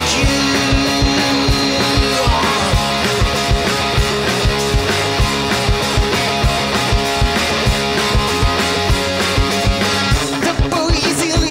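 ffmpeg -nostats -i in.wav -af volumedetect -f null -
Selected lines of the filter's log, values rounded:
mean_volume: -15.0 dB
max_volume: -3.0 dB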